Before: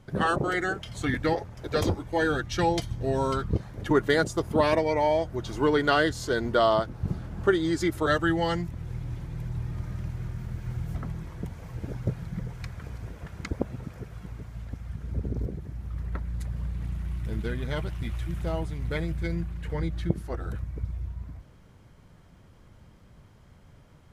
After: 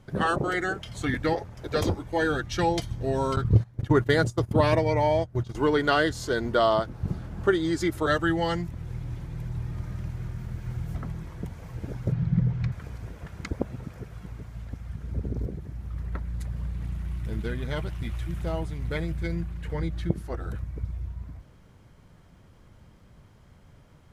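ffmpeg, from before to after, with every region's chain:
ffmpeg -i in.wav -filter_complex "[0:a]asettb=1/sr,asplit=3[link_01][link_02][link_03];[link_01]atrim=end=3.364[link_04];[link_02]atrim=start=3.36:end=5.55,asetpts=PTS-STARTPTS,afade=type=in:duration=0.004:curve=qsin,afade=type=out:start_time=2.186:duration=0.004:curve=qsin,equalizer=frequency=110:width=2.1:gain=13,agate=range=-17dB:threshold=-28dB:ratio=16:release=100:detection=peak[link_05];[link_03]atrim=start=5.546[link_06];[link_04][link_05]acrossfade=duration=0.004:curve1=hsin:curve2=qsin[link_07];[link_07][link_06]acrossfade=duration=0.004:curve1=qsin:curve2=hsin,asettb=1/sr,asplit=3[link_08][link_09][link_10];[link_08]atrim=end=12.124[link_11];[link_09]atrim=start=12.12:end=12.72,asetpts=PTS-STARTPTS,afade=type=in:duration=0.004:curve=qsin,afade=type=out:start_time=0.596:duration=0.004:curve=qsin,lowpass=4400,equalizer=frequency=140:width_type=o:width=1.5:gain=13.5[link_12];[link_10]atrim=start=12.716[link_13];[link_11][link_12]acrossfade=duration=0.004:curve1=hsin:curve2=qsin[link_14];[link_14][link_13]acrossfade=duration=0.004:curve1=qsin:curve2=hsin" out.wav

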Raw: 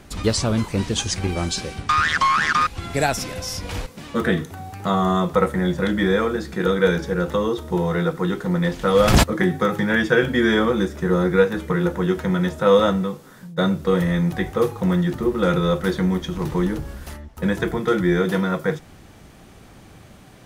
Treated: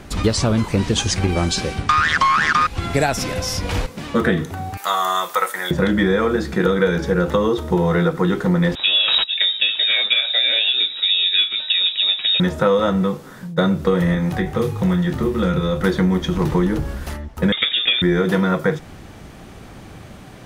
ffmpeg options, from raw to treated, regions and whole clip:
ffmpeg -i in.wav -filter_complex "[0:a]asettb=1/sr,asplit=3[link_01][link_02][link_03];[link_01]atrim=end=4.774[link_04];[link_02]atrim=start=4.77:end=5.71,asetpts=PTS-STARTPTS,afade=type=in:duration=0.004:curve=qsin,afade=type=out:start_time=0.936:duration=0.004:curve=qsin,highpass=980,aemphasis=mode=production:type=50fm[link_05];[link_03]atrim=start=5.706[link_06];[link_04][link_05]acrossfade=duration=0.004:curve1=hsin:curve2=qsin[link_07];[link_07][link_06]acrossfade=duration=0.004:curve1=qsin:curve2=hsin,asettb=1/sr,asplit=3[link_08][link_09][link_10];[link_08]atrim=end=8.754[link_11];[link_09]atrim=start=8.75:end=12.4,asetpts=PTS-STARTPTS,afade=type=in:duration=0.004:curve=qsin,afade=type=out:start_time=3.646:duration=0.004:curve=qsin,bandreject=frequency=1800:width=6.4,lowpass=frequency=3300:width_type=q:width=0.5098,lowpass=frequency=3300:width_type=q:width=0.6013,lowpass=frequency=3300:width_type=q:width=0.9,lowpass=frequency=3300:width_type=q:width=2.563,afreqshift=-3900[link_12];[link_10]atrim=start=12.396[link_13];[link_11][link_12]acrossfade=duration=0.004:curve1=hsin:curve2=qsin[link_14];[link_14][link_13]acrossfade=duration=0.004:curve1=qsin:curve2=hsin,asettb=1/sr,asplit=3[link_15][link_16][link_17];[link_15]atrim=end=14.144[link_18];[link_16]atrim=start=14.14:end=15.81,asetpts=PTS-STARTPTS,afade=type=in:duration=0.004:curve=qsin,afade=type=out:start_time=1.666:duration=0.004:curve=qsin,acrossover=split=89|350|1700[link_19][link_20][link_21][link_22];[link_19]acompressor=threshold=-40dB:ratio=3[link_23];[link_20]acompressor=threshold=-31dB:ratio=3[link_24];[link_21]acompressor=threshold=-35dB:ratio=3[link_25];[link_22]acompressor=threshold=-40dB:ratio=3[link_26];[link_23][link_24][link_25][link_26]amix=inputs=4:normalize=0,equalizer=frequency=110:width_type=o:width=1.9:gain=4,asplit=2[link_27][link_28];[link_28]adelay=27,volume=-8dB[link_29];[link_27][link_29]amix=inputs=2:normalize=0,atrim=end_sample=73647[link_30];[link_17]atrim=start=15.806[link_31];[link_18][link_30]acrossfade=duration=0.004:curve1=hsin:curve2=qsin[link_32];[link_32][link_31]acrossfade=duration=0.004:curve1=qsin:curve2=hsin,asettb=1/sr,asplit=3[link_33][link_34][link_35];[link_33]atrim=end=17.524[link_36];[link_34]atrim=start=17.52:end=18.02,asetpts=PTS-STARTPTS,afade=type=in:duration=0.004:curve=qsin,afade=type=out:start_time=0.496:duration=0.004:curve=qsin,aemphasis=mode=production:type=75kf,lowpass=frequency=3200:width_type=q:width=0.5098,lowpass=frequency=3200:width_type=q:width=0.6013,lowpass=frequency=3200:width_type=q:width=0.9,lowpass=frequency=3200:width_type=q:width=2.563,afreqshift=-3800[link_37];[link_35]atrim=start=18.016[link_38];[link_36][link_37]acrossfade=duration=0.004:curve1=hsin:curve2=qsin[link_39];[link_39][link_38]acrossfade=duration=0.004:curve1=qsin:curve2=hsin,acompressor=threshold=-20dB:ratio=6,highshelf=frequency=5400:gain=-5,volume=7dB" out.wav

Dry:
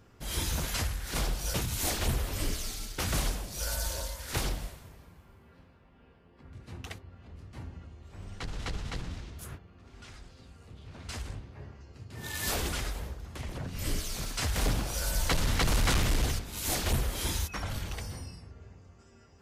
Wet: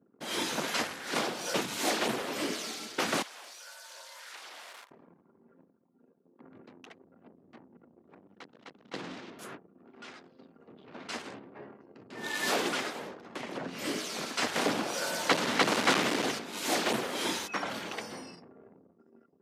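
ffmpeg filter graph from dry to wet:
ffmpeg -i in.wav -filter_complex "[0:a]asettb=1/sr,asplit=3[link_01][link_02][link_03];[link_01]atrim=end=3.224[link_04];[link_02]atrim=start=3.22:end=4.91,asetpts=PTS-STARTPTS,afade=type=in:duration=0.004:curve=qsin,afade=type=out:start_time=1.686:duration=0.004:curve=qsin,aeval=exprs='val(0)+0.5*0.00447*sgn(val(0))':channel_layout=same,highpass=990,acompressor=threshold=-45dB:ratio=16:attack=3.2:release=140:knee=1:detection=peak[link_05];[link_03]atrim=start=4.906[link_06];[link_04][link_05]acrossfade=duration=0.004:curve1=hsin:curve2=qsin[link_07];[link_07][link_06]acrossfade=duration=0.004:curve1=qsin:curve2=hsin,asettb=1/sr,asplit=3[link_08][link_09][link_10];[link_08]atrim=end=6.674[link_11];[link_09]atrim=start=6.67:end=8.94,asetpts=PTS-STARTPTS,afade=type=in:duration=0.004:curve=qsin,afade=type=out:start_time=2.266:duration=0.004:curve=qsin,acompressor=threshold=-47dB:ratio=5:attack=3.2:release=140:knee=1:detection=peak,aeval=exprs='clip(val(0),-1,0.00335)':channel_layout=same[link_12];[link_10]atrim=start=8.936[link_13];[link_11][link_12]acrossfade=duration=0.004:curve1=hsin:curve2=qsin[link_14];[link_14][link_13]acrossfade=duration=0.004:curve1=qsin:curve2=hsin,anlmdn=0.001,highpass=frequency=230:width=0.5412,highpass=frequency=230:width=1.3066,aemphasis=mode=reproduction:type=50fm,volume=6dB" out.wav

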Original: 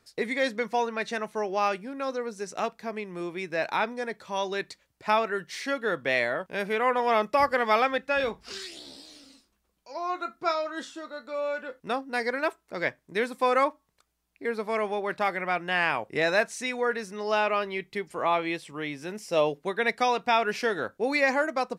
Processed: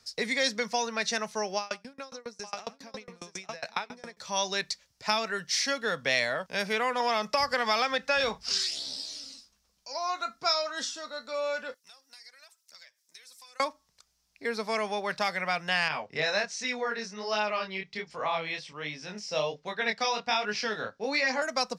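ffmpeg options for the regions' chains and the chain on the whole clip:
ffmpeg -i in.wav -filter_complex "[0:a]asettb=1/sr,asplit=3[link_01][link_02][link_03];[link_01]atrim=end=1.574[link_04];[link_02]atrim=start=1.57:end=4.17,asetpts=PTS-STARTPTS,afade=type=in:duration=0.004:curve=qsin,afade=type=out:start_time=2.596:duration=0.004:curve=qsin,aecho=1:1:96|864:0.119|0.447,atrim=end_sample=114660,aeval=exprs='val(0)*pow(10,-30*if(lt(mod(7.3*n/s,1),2*abs(7.3)/1000),1-mod(7.3*n/s,1)/(2*abs(7.3)/1000),(mod(7.3*n/s,1)-2*abs(7.3)/1000)/(1-2*abs(7.3)/1000))/20)':channel_layout=same[link_05];[link_03]atrim=start=4.166[link_06];[link_04][link_05]acrossfade=duration=0.004:curve1=hsin:curve2=qsin[link_07];[link_07][link_06]acrossfade=duration=0.004:curve1=qsin:curve2=hsin,asettb=1/sr,asplit=3[link_08][link_09][link_10];[link_08]atrim=end=7.004[link_11];[link_09]atrim=start=7:end=8.38,asetpts=PTS-STARTPTS,afade=type=in:duration=0.004:curve=qsin,afade=type=out:start_time=1.376:duration=0.004:curve=qsin,equalizer=frequency=990:width_type=o:width=3:gain=8.5,acompressor=threshold=-20dB:ratio=1.5:attack=3.2:release=140:knee=1:detection=peak[link_12];[link_10]atrim=start=8.376[link_13];[link_11][link_12]acrossfade=duration=0.004:curve1=hsin:curve2=qsin[link_14];[link_14][link_13]acrossfade=duration=0.004:curve1=qsin:curve2=hsin,asettb=1/sr,asplit=3[link_15][link_16][link_17];[link_15]atrim=end=11.744[link_18];[link_16]atrim=start=11.74:end=13.6,asetpts=PTS-STARTPTS,afade=type=in:duration=0.004:curve=qsin,afade=type=out:start_time=1.856:duration=0.004:curve=qsin,aderivative,acompressor=threshold=-56dB:ratio=5:attack=3.2:release=140:knee=1:detection=peak,aphaser=in_gain=1:out_gain=1:delay=3.4:decay=0.42:speed=1.1:type=triangular[link_19];[link_17]atrim=start=13.596[link_20];[link_18][link_19]acrossfade=duration=0.004:curve1=hsin:curve2=qsin[link_21];[link_21][link_20]acrossfade=duration=0.004:curve1=qsin:curve2=hsin,asettb=1/sr,asplit=3[link_22][link_23][link_24];[link_22]atrim=end=15.884[link_25];[link_23]atrim=start=15.88:end=21.42,asetpts=PTS-STARTPTS,afade=type=in:duration=0.004:curve=qsin,afade=type=out:start_time=5.536:duration=0.004:curve=qsin,lowpass=4600,flanger=delay=19:depth=7.5:speed=1.3[link_26];[link_24]atrim=start=21.416[link_27];[link_25][link_26]acrossfade=duration=0.004:curve1=hsin:curve2=qsin[link_28];[link_28][link_27]acrossfade=duration=0.004:curve1=qsin:curve2=hsin,equalizer=frequency=340:width=3.9:gain=-13.5,acrossover=split=250|3000[link_29][link_30][link_31];[link_30]acompressor=threshold=-26dB:ratio=6[link_32];[link_29][link_32][link_31]amix=inputs=3:normalize=0,equalizer=frequency=5400:width=1.3:gain=15" out.wav

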